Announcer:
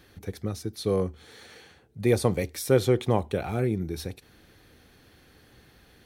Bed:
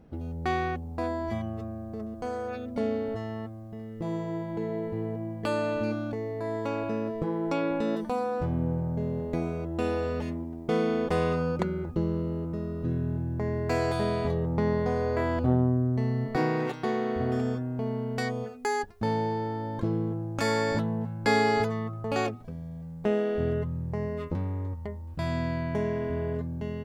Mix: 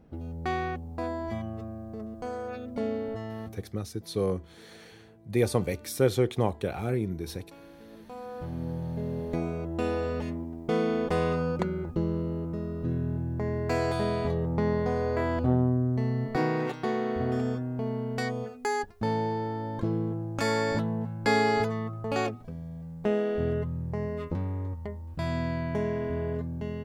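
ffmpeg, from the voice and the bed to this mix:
-filter_complex "[0:a]adelay=3300,volume=-2.5dB[a];[1:a]volume=20dB,afade=t=out:st=3.46:d=0.3:silence=0.0944061,afade=t=in:st=7.89:d=1.45:silence=0.0794328[b];[a][b]amix=inputs=2:normalize=0"

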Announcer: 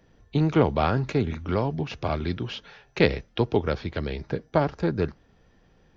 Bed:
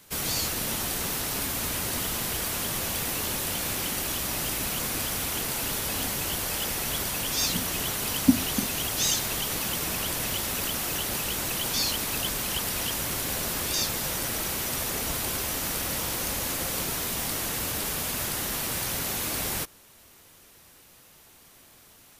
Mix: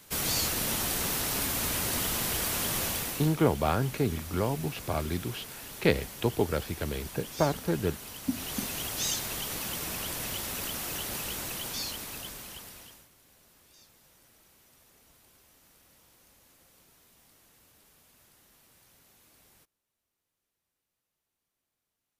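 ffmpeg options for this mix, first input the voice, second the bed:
-filter_complex "[0:a]adelay=2850,volume=-4dB[a];[1:a]volume=8dB,afade=t=out:st=2.83:d=0.53:silence=0.211349,afade=t=in:st=8.22:d=0.41:silence=0.375837,afade=t=out:st=11.26:d=1.83:silence=0.0501187[b];[a][b]amix=inputs=2:normalize=0"

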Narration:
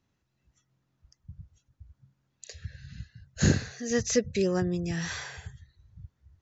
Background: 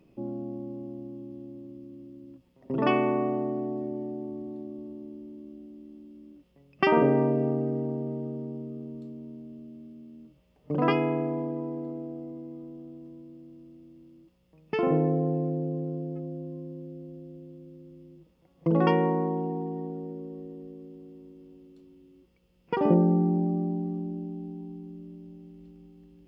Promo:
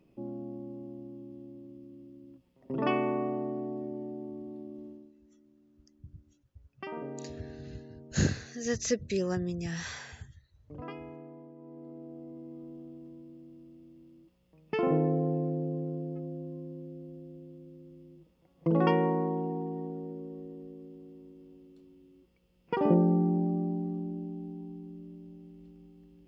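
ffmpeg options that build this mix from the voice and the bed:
-filter_complex "[0:a]adelay=4750,volume=-4dB[a];[1:a]volume=11.5dB,afade=t=out:st=4.86:d=0.27:silence=0.199526,afade=t=in:st=11.57:d=1.15:silence=0.158489[b];[a][b]amix=inputs=2:normalize=0"

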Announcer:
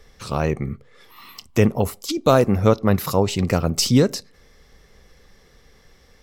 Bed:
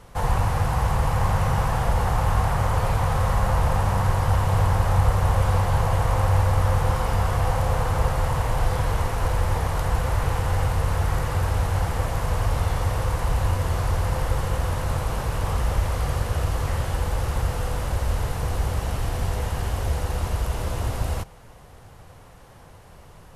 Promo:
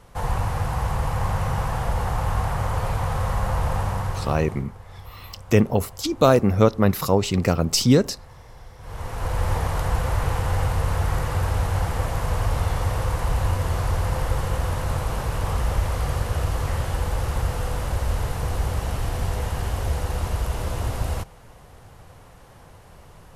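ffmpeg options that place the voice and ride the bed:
-filter_complex "[0:a]adelay=3950,volume=-0.5dB[a];[1:a]volume=20dB,afade=t=out:st=3.81:d=0.84:silence=0.1,afade=t=in:st=8.79:d=0.7:silence=0.0749894[b];[a][b]amix=inputs=2:normalize=0"

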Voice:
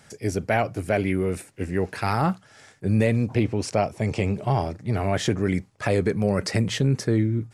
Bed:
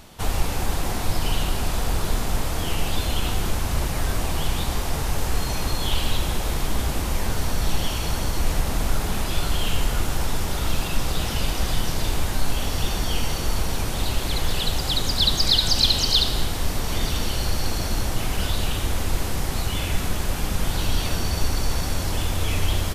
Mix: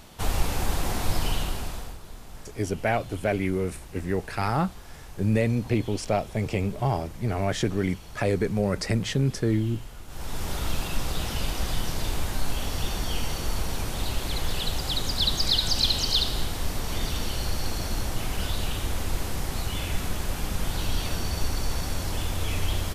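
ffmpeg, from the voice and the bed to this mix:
-filter_complex "[0:a]adelay=2350,volume=-2.5dB[a];[1:a]volume=13dB,afade=t=out:st=1.18:d=0.8:silence=0.133352,afade=t=in:st=10.07:d=0.43:silence=0.177828[b];[a][b]amix=inputs=2:normalize=0"

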